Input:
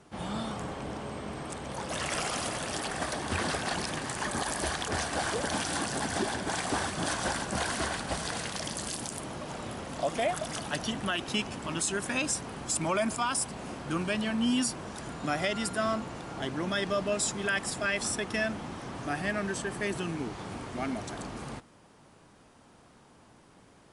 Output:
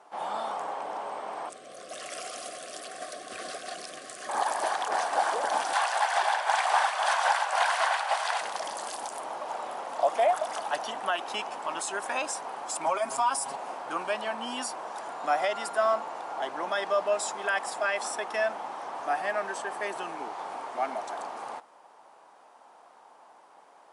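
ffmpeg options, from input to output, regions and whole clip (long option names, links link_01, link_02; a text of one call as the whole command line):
ffmpeg -i in.wav -filter_complex "[0:a]asettb=1/sr,asplit=3[link_01][link_02][link_03];[link_01]atrim=end=1.494[link_04];[link_02]atrim=start=1.49:end=4.29,asetpts=PTS-STARTPTS,afade=type=in:duration=0.004:curve=qsin,afade=type=out:start_time=2.796:duration=0.004:curve=qsin,asuperstop=centerf=900:order=20:qfactor=3.1,equalizer=frequency=1100:width_type=o:width=2.3:gain=-12[link_05];[link_03]atrim=start=4.286[link_06];[link_04][link_05]acrossfade=duration=0.004:curve1=hsin:curve2=qsin[link_07];[link_07][link_06]acrossfade=duration=0.004:curve1=qsin:curve2=hsin,asettb=1/sr,asplit=3[link_08][link_09][link_10];[link_08]atrim=end=5.734[link_11];[link_09]atrim=start=5.73:end=8.41,asetpts=PTS-STARTPTS,afade=type=in:duration=0.004:curve=qsin,afade=type=out:start_time=2.676:duration=0.004:curve=qsin,highpass=frequency=580:width=0.5412,highpass=frequency=580:width=1.3066,equalizer=frequency=2500:width_type=o:width=1.9:gain=8[link_12];[link_10]atrim=start=8.406[link_13];[link_11][link_12]acrossfade=duration=0.004:curve1=hsin:curve2=qsin[link_14];[link_14][link_13]acrossfade=duration=0.004:curve1=qsin:curve2=hsin,asettb=1/sr,asplit=3[link_15][link_16][link_17];[link_15]atrim=end=12.864[link_18];[link_16]atrim=start=12.86:end=13.56,asetpts=PTS-STARTPTS,afade=type=in:duration=0.004:curve=qsin,afade=type=out:start_time=0.696:duration=0.004:curve=qsin,acompressor=threshold=-32dB:ratio=2.5:attack=3.2:release=140:knee=1:detection=peak,bass=frequency=250:gain=8,treble=frequency=4000:gain=5,aecho=1:1:7.3:0.84,atrim=end_sample=30870[link_19];[link_17]atrim=start=13.556[link_20];[link_18][link_19]acrossfade=duration=0.004:curve1=hsin:curve2=qsin[link_21];[link_21][link_20]acrossfade=duration=0.004:curve1=qsin:curve2=hsin,highpass=470,equalizer=frequency=830:width_type=o:width=1.4:gain=15,volume=-4.5dB" out.wav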